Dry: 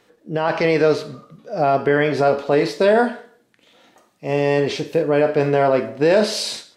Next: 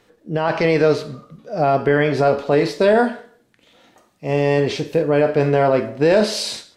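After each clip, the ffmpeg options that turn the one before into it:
ffmpeg -i in.wav -af "lowshelf=frequency=91:gain=12" out.wav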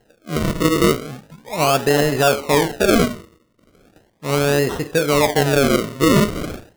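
ffmpeg -i in.wav -af "acrusher=samples=37:mix=1:aa=0.000001:lfo=1:lforange=37:lforate=0.37" out.wav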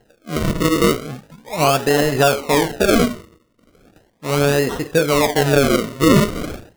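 ffmpeg -i in.wav -af "aphaser=in_gain=1:out_gain=1:delay=4.3:decay=0.27:speed=1.8:type=sinusoidal" out.wav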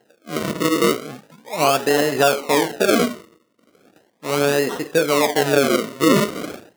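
ffmpeg -i in.wav -af "highpass=220,volume=-1dB" out.wav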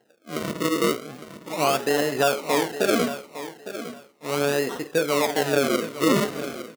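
ffmpeg -i in.wav -af "aecho=1:1:858|1716:0.237|0.0474,volume=-5dB" out.wav

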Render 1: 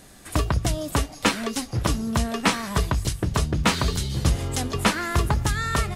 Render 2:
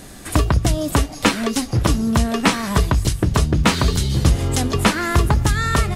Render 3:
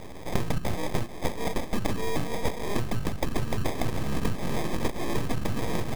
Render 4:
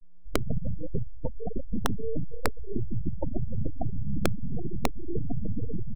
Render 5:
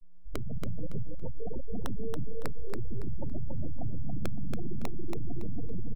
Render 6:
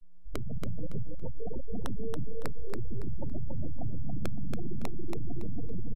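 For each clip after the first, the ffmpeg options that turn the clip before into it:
ffmpeg -i in.wav -filter_complex "[0:a]equalizer=frequency=300:width_type=o:width=1:gain=2.5,asplit=2[link_01][link_02];[link_02]acompressor=threshold=-29dB:ratio=6,volume=2.5dB[link_03];[link_01][link_03]amix=inputs=2:normalize=0,lowshelf=frequency=170:gain=3,volume=1dB" out.wav
ffmpeg -i in.wav -af "acompressor=threshold=-22dB:ratio=6,acrusher=samples=31:mix=1:aa=0.000001,aeval=exprs='abs(val(0))':channel_layout=same" out.wav
ffmpeg -i in.wav -af "aecho=1:1:119|238|357|476:0.335|0.137|0.0563|0.0231,afftfilt=real='re*gte(hypot(re,im),0.178)':imag='im*gte(hypot(re,im),0.178)':win_size=1024:overlap=0.75,aeval=exprs='(mod(4.47*val(0)+1,2)-1)/4.47':channel_layout=same" out.wav
ffmpeg -i in.wav -af "alimiter=limit=-23.5dB:level=0:latency=1:release=28,aecho=1:1:280|560|840|1120:0.631|0.177|0.0495|0.0139,volume=-1dB" out.wav
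ffmpeg -i in.wav -af "aresample=32000,aresample=44100" out.wav

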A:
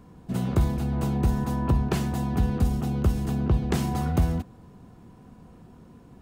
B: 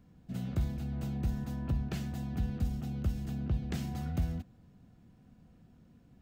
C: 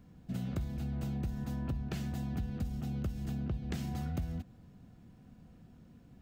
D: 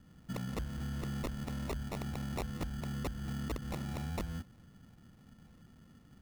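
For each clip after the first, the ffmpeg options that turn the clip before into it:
ffmpeg -i in.wav -af "equalizer=frequency=400:width_type=o:width=0.67:gain=-8,equalizer=frequency=1000:width_type=o:width=0.67:gain=-11,equalizer=frequency=10000:width_type=o:width=0.67:gain=-7,volume=-9dB" out.wav
ffmpeg -i in.wav -af "acompressor=threshold=-36dB:ratio=5,volume=3dB" out.wav
ffmpeg -i in.wav -af "acrusher=samples=28:mix=1:aa=0.000001,aeval=exprs='(mod(28.2*val(0)+1,2)-1)/28.2':channel_layout=same,volume=-2dB" out.wav

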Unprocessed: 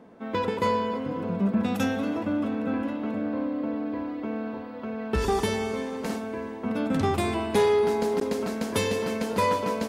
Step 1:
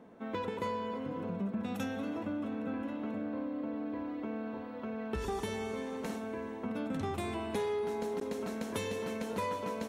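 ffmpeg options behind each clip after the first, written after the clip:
ffmpeg -i in.wav -af "bandreject=frequency=4800:width=8.5,acompressor=threshold=-31dB:ratio=2.5,volume=-4.5dB" out.wav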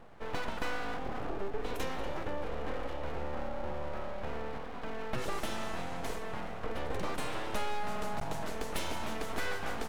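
ffmpeg -i in.wav -af "aeval=exprs='abs(val(0))':channel_layout=same,volume=3.5dB" out.wav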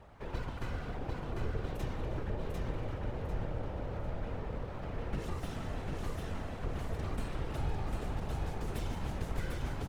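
ffmpeg -i in.wav -filter_complex "[0:a]afftfilt=real='hypot(re,im)*cos(2*PI*random(0))':imag='hypot(re,im)*sin(2*PI*random(1))':win_size=512:overlap=0.75,aecho=1:1:747|1494|2241|2988|3735:0.708|0.255|0.0917|0.033|0.0119,acrossover=split=420[link_01][link_02];[link_02]acompressor=threshold=-51dB:ratio=3[link_03];[link_01][link_03]amix=inputs=2:normalize=0,volume=4dB" out.wav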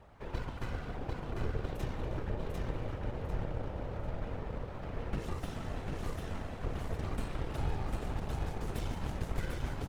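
ffmpeg -i in.wav -af "aeval=exprs='0.0891*(cos(1*acos(clip(val(0)/0.0891,-1,1)))-cos(1*PI/2))+0.00355*(cos(7*acos(clip(val(0)/0.0891,-1,1)))-cos(7*PI/2))':channel_layout=same,volume=1dB" out.wav

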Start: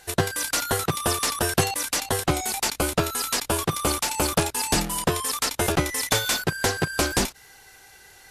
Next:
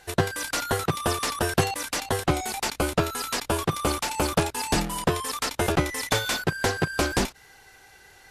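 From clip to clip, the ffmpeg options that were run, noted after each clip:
ffmpeg -i in.wav -af "highshelf=frequency=4900:gain=-8" out.wav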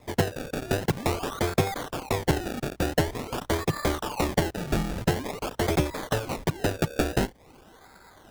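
ffmpeg -i in.wav -filter_complex "[0:a]acrossover=split=180|1100|5500[link_01][link_02][link_03][link_04];[link_03]acompressor=threshold=-43dB:ratio=6[link_05];[link_01][link_02][link_05][link_04]amix=inputs=4:normalize=0,acrusher=samples=29:mix=1:aa=0.000001:lfo=1:lforange=29:lforate=0.47" out.wav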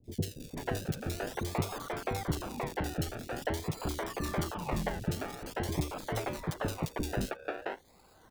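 ffmpeg -i in.wav -filter_complex "[0:a]acrossover=split=390|2900[link_01][link_02][link_03];[link_03]adelay=40[link_04];[link_02]adelay=490[link_05];[link_01][link_05][link_04]amix=inputs=3:normalize=0,volume=-6.5dB" out.wav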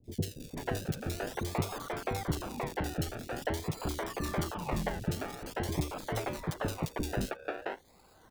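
ffmpeg -i in.wav -af anull out.wav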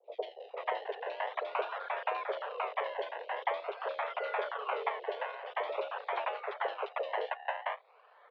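ffmpeg -i in.wav -af "highpass=frequency=210:width_type=q:width=0.5412,highpass=frequency=210:width_type=q:width=1.307,lowpass=frequency=3000:width_type=q:width=0.5176,lowpass=frequency=3000:width_type=q:width=0.7071,lowpass=frequency=3000:width_type=q:width=1.932,afreqshift=250,volume=1.5dB" out.wav

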